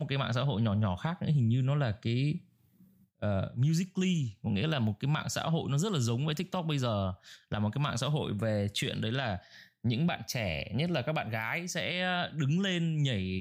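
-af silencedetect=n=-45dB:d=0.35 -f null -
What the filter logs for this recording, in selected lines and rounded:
silence_start: 2.38
silence_end: 3.22 | silence_duration: 0.84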